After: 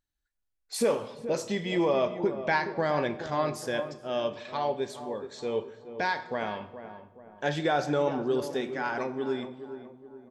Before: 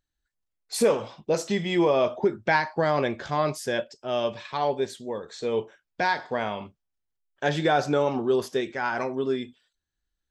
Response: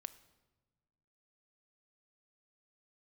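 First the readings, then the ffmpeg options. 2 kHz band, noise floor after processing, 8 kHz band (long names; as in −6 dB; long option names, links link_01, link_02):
−4.0 dB, −80 dBFS, −4.0 dB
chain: -filter_complex "[0:a]asplit=2[link_01][link_02];[link_02]adelay=423,lowpass=frequency=1100:poles=1,volume=-10.5dB,asplit=2[link_03][link_04];[link_04]adelay=423,lowpass=frequency=1100:poles=1,volume=0.49,asplit=2[link_05][link_06];[link_06]adelay=423,lowpass=frequency=1100:poles=1,volume=0.49,asplit=2[link_07][link_08];[link_08]adelay=423,lowpass=frequency=1100:poles=1,volume=0.49,asplit=2[link_09][link_10];[link_10]adelay=423,lowpass=frequency=1100:poles=1,volume=0.49[link_11];[link_01][link_03][link_05][link_07][link_09][link_11]amix=inputs=6:normalize=0[link_12];[1:a]atrim=start_sample=2205,asetrate=41013,aresample=44100[link_13];[link_12][link_13]afir=irnorm=-1:irlink=0"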